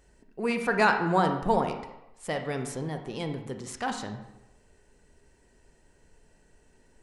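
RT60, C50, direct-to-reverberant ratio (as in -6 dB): 0.95 s, 7.5 dB, 5.5 dB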